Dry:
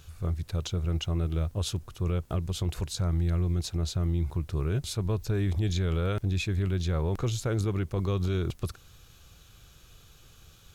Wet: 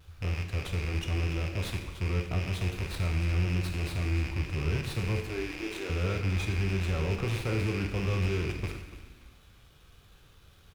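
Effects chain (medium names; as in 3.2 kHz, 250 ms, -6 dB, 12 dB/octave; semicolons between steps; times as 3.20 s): rattle on loud lows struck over -36 dBFS, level -23 dBFS; 5.27–5.90 s: elliptic high-pass 300 Hz; frequency-shifting echo 288 ms, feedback 37%, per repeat -48 Hz, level -14.5 dB; vibrato 0.9 Hz 39 cents; plate-style reverb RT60 1.1 s, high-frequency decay 0.85×, DRR 2.5 dB; sliding maximum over 5 samples; trim -4 dB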